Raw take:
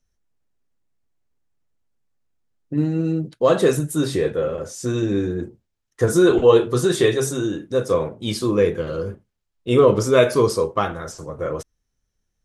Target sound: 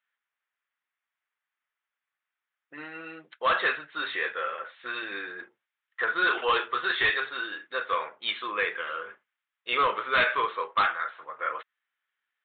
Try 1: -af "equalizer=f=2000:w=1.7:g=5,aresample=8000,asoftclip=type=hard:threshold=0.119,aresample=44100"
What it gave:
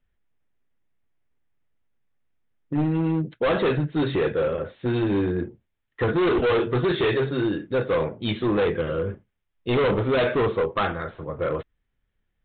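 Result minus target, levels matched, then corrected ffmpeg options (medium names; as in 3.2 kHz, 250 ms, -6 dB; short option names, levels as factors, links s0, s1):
1 kHz band -6.0 dB
-af "highpass=f=1300:t=q:w=1.6,equalizer=f=2000:w=1.7:g=5,aresample=8000,asoftclip=type=hard:threshold=0.119,aresample=44100"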